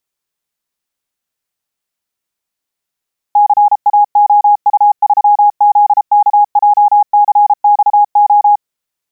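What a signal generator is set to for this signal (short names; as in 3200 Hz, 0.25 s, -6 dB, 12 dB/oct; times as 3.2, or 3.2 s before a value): Morse "CAOU3ZKJCXO" 33 wpm 827 Hz -4 dBFS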